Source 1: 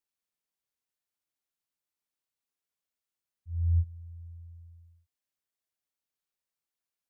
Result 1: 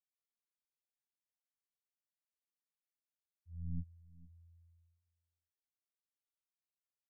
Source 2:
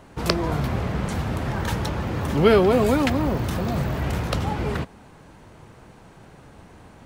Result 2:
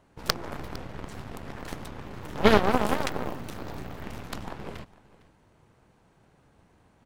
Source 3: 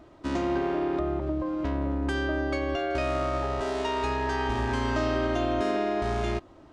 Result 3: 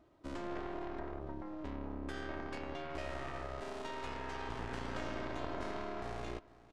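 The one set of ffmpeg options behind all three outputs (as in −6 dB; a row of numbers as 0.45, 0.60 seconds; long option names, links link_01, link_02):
-af "aeval=exprs='0.891*(cos(1*acos(clip(val(0)/0.891,-1,1)))-cos(1*PI/2))+0.0282*(cos(5*acos(clip(val(0)/0.891,-1,1)))-cos(5*PI/2))+0.112*(cos(6*acos(clip(val(0)/0.891,-1,1)))-cos(6*PI/2))+0.178*(cos(7*acos(clip(val(0)/0.891,-1,1)))-cos(7*PI/2))':channel_layout=same,aecho=1:1:456:0.1,volume=-2dB"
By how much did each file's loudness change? −15.5, −7.0, −14.5 LU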